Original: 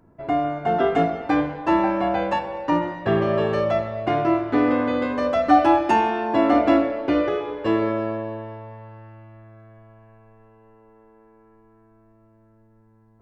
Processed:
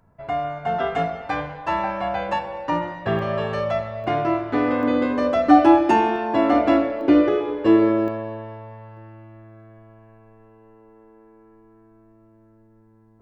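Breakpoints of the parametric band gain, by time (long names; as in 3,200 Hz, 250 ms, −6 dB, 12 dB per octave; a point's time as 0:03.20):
parametric band 320 Hz 0.79 octaves
−15 dB
from 0:02.29 −6.5 dB
from 0:03.19 −12.5 dB
from 0:04.04 −3 dB
from 0:04.83 +6 dB
from 0:06.16 −0.5 dB
from 0:07.01 +7.5 dB
from 0:08.08 −2 dB
from 0:08.97 +5.5 dB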